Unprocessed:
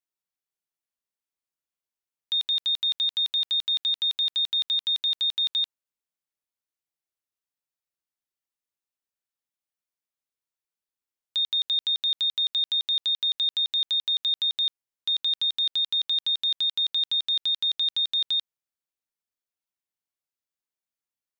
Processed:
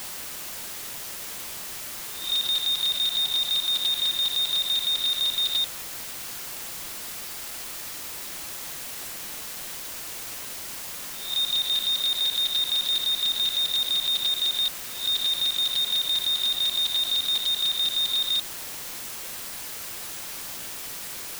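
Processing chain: reverse spectral sustain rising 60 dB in 0.46 s; word length cut 6-bit, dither triangular; crackling interface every 0.10 s, samples 256, repeat

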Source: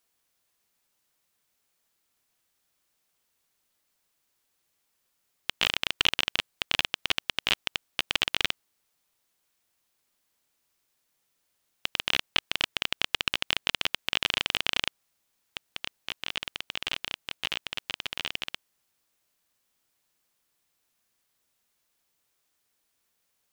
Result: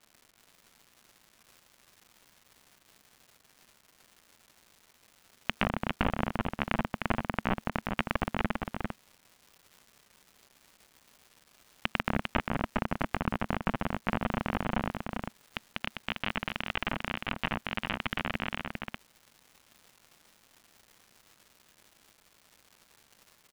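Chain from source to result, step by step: low-pass 2 kHz 12 dB/octave; low-pass that closes with the level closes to 1 kHz, closed at -35.5 dBFS; FFT filter 140 Hz 0 dB, 220 Hz +5 dB, 370 Hz -9 dB, 670 Hz -4 dB; in parallel at 0 dB: peak limiter -27.5 dBFS, peak gain reduction 12.5 dB; on the sum: crackle 260 per s -51 dBFS; on a send: delay 399 ms -4.5 dB; on the sum: trim +6.5 dB

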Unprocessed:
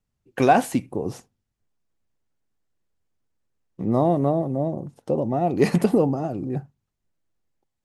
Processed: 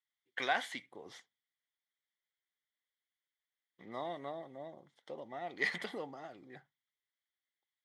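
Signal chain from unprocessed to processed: two resonant band-passes 2.6 kHz, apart 0.7 oct; trim +4 dB

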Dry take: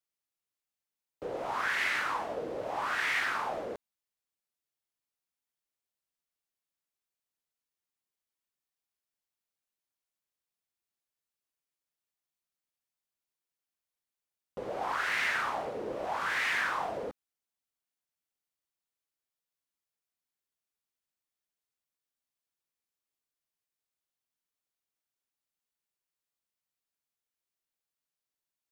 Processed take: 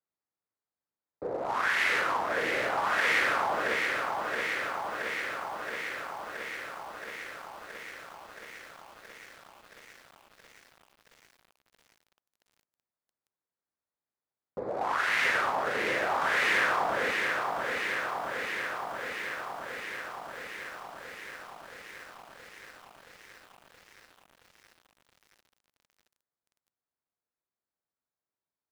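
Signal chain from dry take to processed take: local Wiener filter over 15 samples; high-pass 48 Hz 12 dB/octave; bass shelf 220 Hz -2.5 dB; bit-crushed delay 673 ms, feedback 80%, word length 10-bit, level -4.5 dB; trim +4 dB

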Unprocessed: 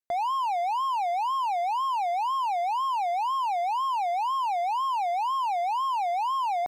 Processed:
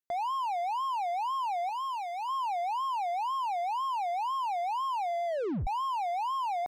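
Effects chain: 1.69–2.29 s: Bessel high-pass 920 Hz; 5.12 s: tape stop 0.55 s; trim -4.5 dB

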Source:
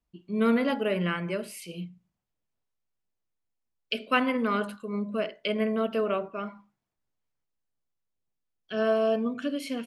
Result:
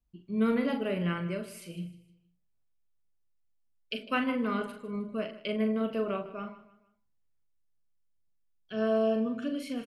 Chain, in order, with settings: bass shelf 160 Hz +12 dB; doubling 41 ms -7 dB; on a send: feedback delay 154 ms, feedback 38%, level -16 dB; on the sum: trim -6.5 dB

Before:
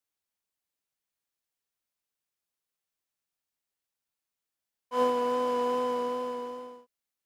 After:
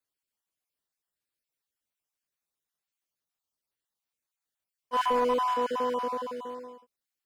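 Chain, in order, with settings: random holes in the spectrogram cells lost 30%; dynamic bell 1.4 kHz, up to +4 dB, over -42 dBFS, Q 0.9; 4.93–5.54 s: waveshaping leveller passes 1

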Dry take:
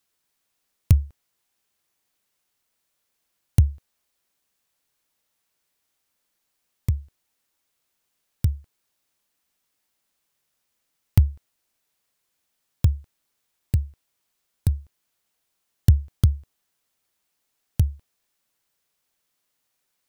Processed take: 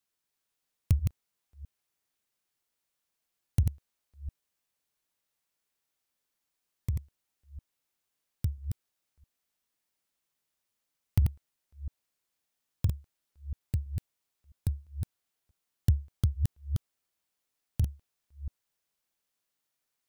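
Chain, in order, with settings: chunks repeated in reverse 330 ms, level -4.5 dB; trim -9 dB

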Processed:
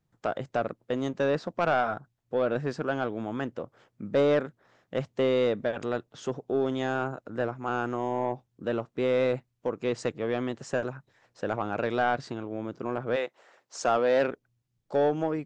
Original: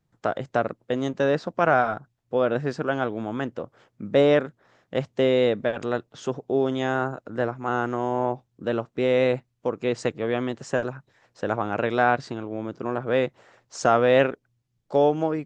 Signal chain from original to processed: 13.15–14.27 s: high-pass 580 Hz -> 150 Hz 12 dB/octave; saturation -13 dBFS, distortion -16 dB; trim -3 dB

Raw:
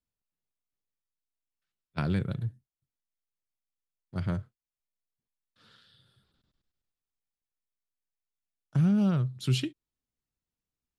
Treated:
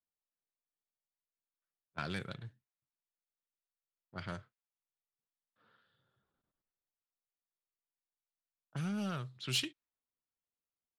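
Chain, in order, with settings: level-controlled noise filter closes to 900 Hz, open at -23.5 dBFS; overdrive pedal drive 14 dB, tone 1.7 kHz, clips at -15.5 dBFS; pre-emphasis filter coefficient 0.9; trim +8 dB

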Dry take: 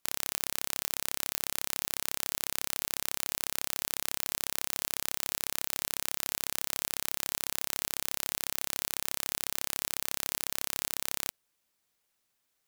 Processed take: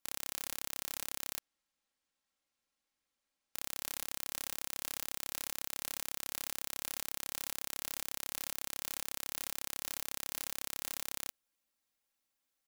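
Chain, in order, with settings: 1.39–3.55 s: median filter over 3 samples; comb 3.7 ms, depth 54%; trim -8 dB

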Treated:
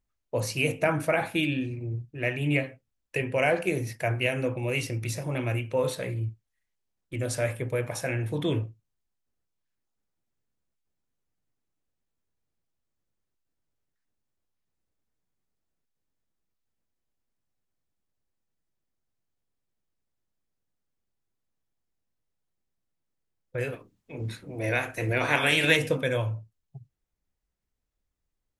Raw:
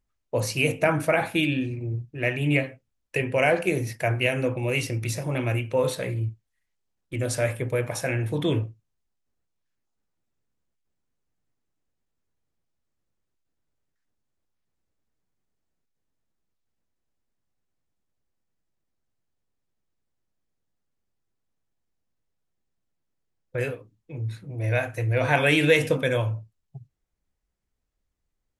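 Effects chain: 23.72–25.75 s: spectral peaks clipped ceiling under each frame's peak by 15 dB; trim -3 dB

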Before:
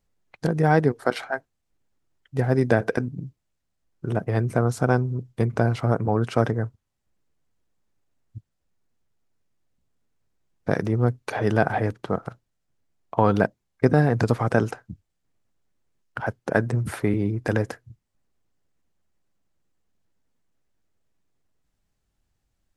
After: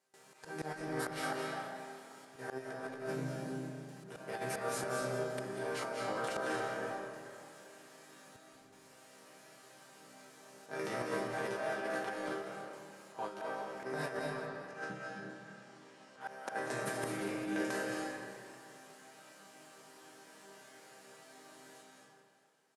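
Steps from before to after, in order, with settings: spectral levelling over time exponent 0.6; chord resonator C3 minor, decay 0.55 s; gate with hold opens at -58 dBFS; high-pass 200 Hz 12 dB/octave; tilt EQ +2.5 dB/octave; slow attack 509 ms; compressor with a negative ratio -50 dBFS, ratio -0.5; 14.17–16.21 s: distance through air 82 m; frequency-shifting echo 396 ms, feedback 33%, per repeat +31 Hz, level -15.5 dB; reverberation RT60 1.7 s, pre-delay 154 ms, DRR -0.5 dB; trim +9.5 dB

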